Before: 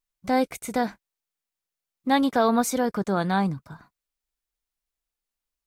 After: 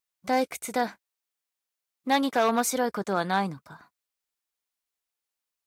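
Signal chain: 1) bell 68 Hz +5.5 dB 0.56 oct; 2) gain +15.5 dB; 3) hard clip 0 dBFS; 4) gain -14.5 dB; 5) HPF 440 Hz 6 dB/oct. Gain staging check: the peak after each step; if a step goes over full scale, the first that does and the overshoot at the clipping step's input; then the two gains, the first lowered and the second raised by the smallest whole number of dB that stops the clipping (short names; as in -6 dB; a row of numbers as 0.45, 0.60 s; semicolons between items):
-10.5, +5.0, 0.0, -14.5, -10.5 dBFS; step 2, 5.0 dB; step 2 +10.5 dB, step 4 -9.5 dB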